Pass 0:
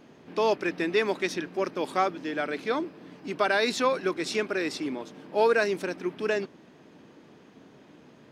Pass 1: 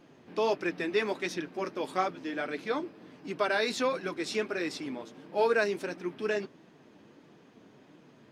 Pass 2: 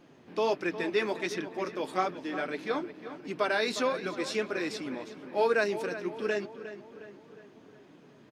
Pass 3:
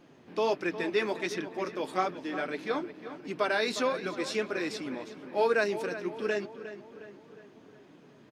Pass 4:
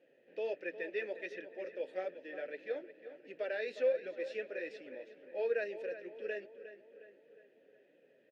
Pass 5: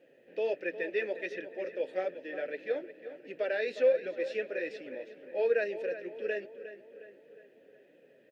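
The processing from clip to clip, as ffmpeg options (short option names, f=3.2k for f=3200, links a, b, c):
-af "flanger=delay=5.5:depth=4.6:regen=-38:speed=1.5:shape=triangular"
-filter_complex "[0:a]asplit=2[a][b];[b]adelay=359,lowpass=f=3.2k:p=1,volume=-12dB,asplit=2[c][d];[d]adelay=359,lowpass=f=3.2k:p=1,volume=0.54,asplit=2[e][f];[f]adelay=359,lowpass=f=3.2k:p=1,volume=0.54,asplit=2[g][h];[h]adelay=359,lowpass=f=3.2k:p=1,volume=0.54,asplit=2[i][j];[j]adelay=359,lowpass=f=3.2k:p=1,volume=0.54,asplit=2[k][l];[l]adelay=359,lowpass=f=3.2k:p=1,volume=0.54[m];[a][c][e][g][i][k][m]amix=inputs=7:normalize=0"
-af anull
-filter_complex "[0:a]asplit=3[a][b][c];[a]bandpass=f=530:t=q:w=8,volume=0dB[d];[b]bandpass=f=1.84k:t=q:w=8,volume=-6dB[e];[c]bandpass=f=2.48k:t=q:w=8,volume=-9dB[f];[d][e][f]amix=inputs=3:normalize=0,volume=1dB"
-af "lowshelf=f=150:g=6,volume=5.5dB"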